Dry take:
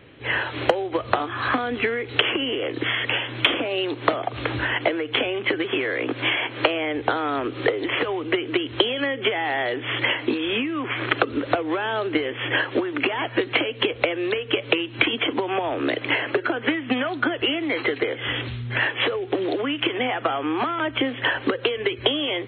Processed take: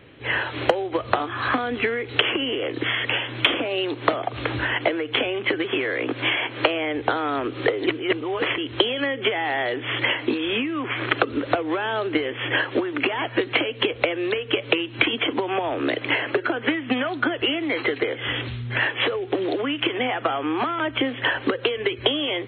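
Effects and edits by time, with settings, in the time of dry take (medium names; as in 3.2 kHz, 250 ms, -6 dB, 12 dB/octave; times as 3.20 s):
7.87–8.58 s: reverse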